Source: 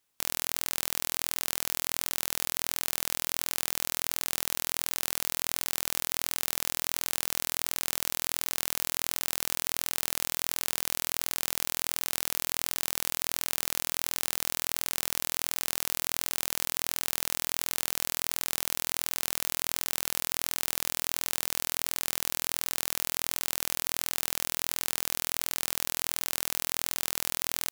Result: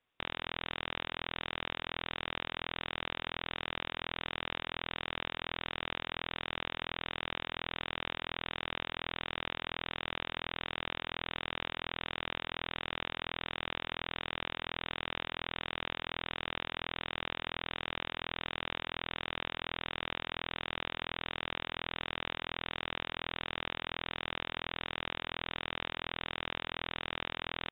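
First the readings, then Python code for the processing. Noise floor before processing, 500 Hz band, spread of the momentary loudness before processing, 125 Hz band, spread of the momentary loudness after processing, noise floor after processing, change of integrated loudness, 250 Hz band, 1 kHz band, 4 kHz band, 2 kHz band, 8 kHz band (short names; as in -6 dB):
-76 dBFS, 0.0 dB, 0 LU, +0.5 dB, 0 LU, -68 dBFS, -9.0 dB, 0.0 dB, 0.0 dB, -4.0 dB, 0.0 dB, under -40 dB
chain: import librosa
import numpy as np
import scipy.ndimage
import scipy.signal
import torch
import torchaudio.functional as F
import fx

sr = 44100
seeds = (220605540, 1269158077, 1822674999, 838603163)

y = fx.freq_invert(x, sr, carrier_hz=3700)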